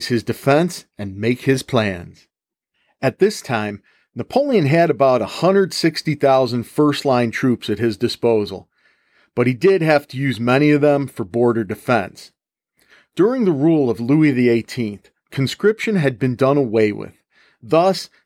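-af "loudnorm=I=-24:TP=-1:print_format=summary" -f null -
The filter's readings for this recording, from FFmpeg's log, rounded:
Input Integrated:    -17.7 LUFS
Input True Peak:      -1.3 dBTP
Input LRA:             3.0 LU
Input Threshold:     -28.5 LUFS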